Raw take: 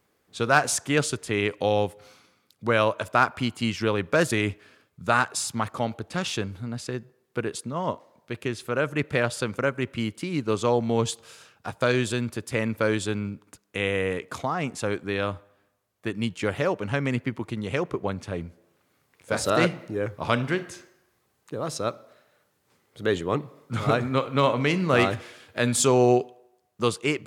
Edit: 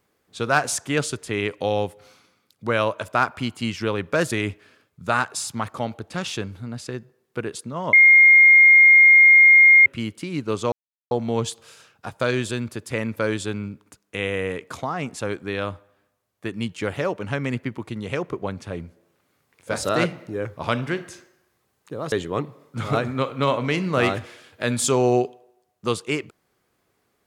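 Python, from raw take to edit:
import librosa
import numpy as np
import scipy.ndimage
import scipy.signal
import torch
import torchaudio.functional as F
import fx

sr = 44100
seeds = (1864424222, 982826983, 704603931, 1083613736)

y = fx.edit(x, sr, fx.bleep(start_s=7.93, length_s=1.93, hz=2130.0, db=-8.0),
    fx.insert_silence(at_s=10.72, length_s=0.39),
    fx.cut(start_s=21.73, length_s=1.35), tone=tone)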